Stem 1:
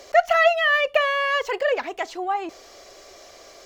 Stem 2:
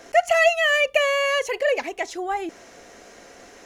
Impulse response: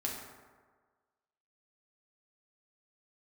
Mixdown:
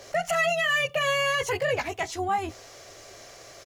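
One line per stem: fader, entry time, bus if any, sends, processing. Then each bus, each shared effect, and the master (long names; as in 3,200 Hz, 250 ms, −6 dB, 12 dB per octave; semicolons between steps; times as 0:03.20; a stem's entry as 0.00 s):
−2.5 dB, 0.00 s, no send, sub-octave generator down 2 octaves, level −1 dB
−8.0 dB, 16 ms, no send, spectral tilt +3 dB per octave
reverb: not used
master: brickwall limiter −17 dBFS, peak gain reduction 9.5 dB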